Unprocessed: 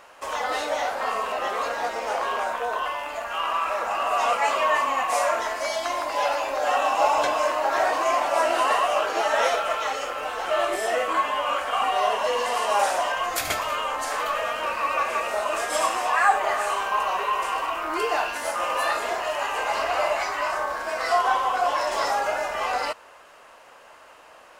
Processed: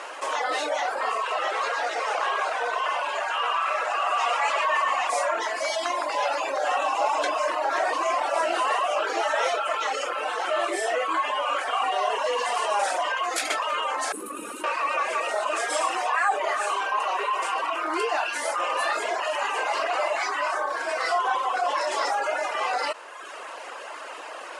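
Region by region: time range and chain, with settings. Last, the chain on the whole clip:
0:01.18–0:05.10: meter weighting curve A + multi-tap delay 123/814 ms −4/−6 dB
0:14.12–0:14.64: lower of the sound and its delayed copy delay 0.74 ms + drawn EQ curve 240 Hz 0 dB, 1,500 Hz −20 dB, 5,000 Hz −19 dB, 10,000 Hz +5 dB
whole clip: reverb reduction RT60 0.79 s; elliptic band-pass filter 310–9,800 Hz, stop band 40 dB; envelope flattener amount 50%; level −4.5 dB

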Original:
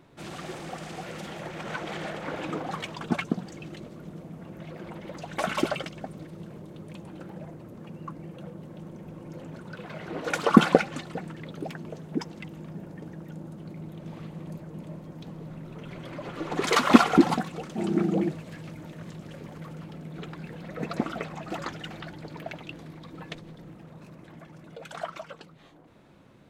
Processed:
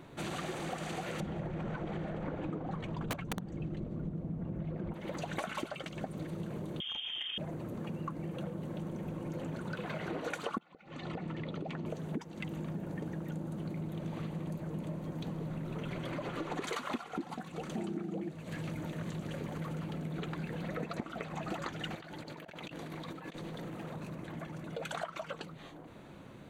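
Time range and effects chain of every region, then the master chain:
0:01.20–0:04.94: spectral tilt −4 dB per octave + wrap-around overflow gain 15.5 dB
0:06.80–0:07.38: voice inversion scrambler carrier 3,400 Hz + saturating transformer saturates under 820 Hz
0:10.58–0:11.86: low-pass filter 4,000 Hz + downward compressor 10 to 1, threshold −37 dBFS + notch filter 1,600 Hz, Q 6.8
0:21.95–0:23.96: low-shelf EQ 180 Hz −9.5 dB + mains-hum notches 50/100/150/200/250/300/350 Hz + compressor whose output falls as the input rises −50 dBFS
whole clip: notch filter 5,200 Hz, Q 6.2; downward compressor 16 to 1, threshold −39 dBFS; level +4.5 dB

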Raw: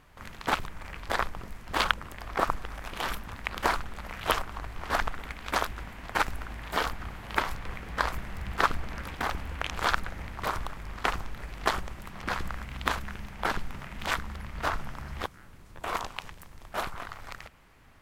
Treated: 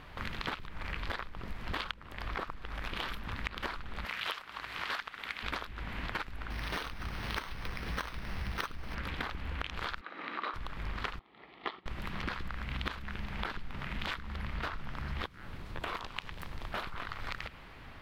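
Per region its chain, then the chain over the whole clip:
0:04.05–0:05.43: high-pass filter 320 Hz 6 dB per octave + tilt shelving filter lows −5 dB
0:06.50–0:08.95: high-shelf EQ 4,800 Hz +7.5 dB + bad sample-rate conversion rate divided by 6×, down none, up hold
0:10.01–0:10.54: high-pass filter 190 Hz 24 dB per octave + three-way crossover with the lows and the highs turned down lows −14 dB, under 380 Hz, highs −21 dB, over 4,400 Hz + hollow resonant body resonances 300/1,200/3,900 Hz, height 10 dB, ringing for 25 ms
0:11.19–0:11.86: loudspeaker in its box 330–3,500 Hz, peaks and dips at 340 Hz +3 dB, 560 Hz −8 dB, 1,000 Hz −4 dB, 1,600 Hz −9 dB, 2,600 Hz −7 dB + notch filter 1,500 Hz, Q 7.2 + expander for the loud parts, over −50 dBFS
whole clip: high shelf with overshoot 5,300 Hz −9 dB, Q 1.5; downward compressor 16 to 1, threshold −40 dBFS; dynamic equaliser 720 Hz, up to −6 dB, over −57 dBFS, Q 1.5; level +7.5 dB

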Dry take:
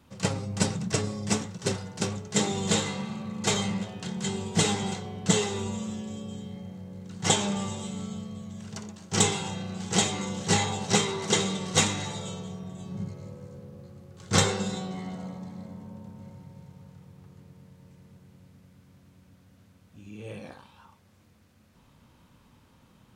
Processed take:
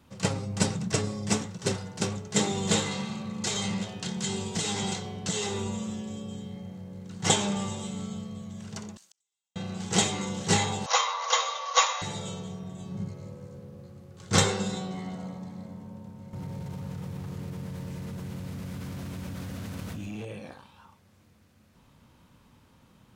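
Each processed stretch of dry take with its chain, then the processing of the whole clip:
0:02.91–0:05.47: parametric band 5,500 Hz +6 dB 2.1 octaves + downward compressor 12 to 1, threshold −25 dBFS + one half of a high-frequency compander decoder only
0:08.97–0:09.56: first difference + downward compressor 2 to 1, threshold −48 dBFS + gate with flip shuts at −41 dBFS, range −42 dB
0:10.86–0:12.02: linear-phase brick-wall band-pass 470–7,100 Hz + parametric band 1,100 Hz +15 dB 0.29 octaves
0:16.33–0:20.25: leveller curve on the samples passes 2 + envelope flattener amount 100%
whole clip: no processing

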